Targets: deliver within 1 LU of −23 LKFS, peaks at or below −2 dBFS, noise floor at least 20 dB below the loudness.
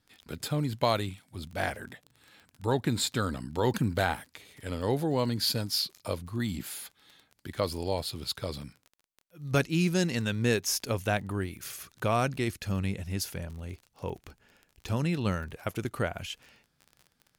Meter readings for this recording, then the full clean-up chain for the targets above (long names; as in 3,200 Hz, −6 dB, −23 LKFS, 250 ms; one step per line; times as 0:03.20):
crackle rate 27 per second; integrated loudness −31.0 LKFS; sample peak −10.5 dBFS; target loudness −23.0 LKFS
→ click removal
level +8 dB